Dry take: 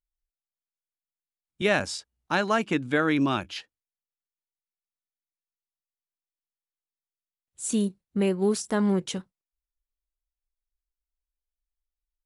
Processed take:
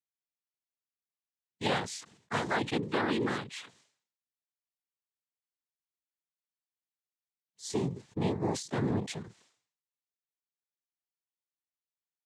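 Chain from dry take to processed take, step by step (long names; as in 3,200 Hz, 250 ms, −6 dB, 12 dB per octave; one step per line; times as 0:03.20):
cochlear-implant simulation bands 6
level that may fall only so fast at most 110 dB per second
level −6.5 dB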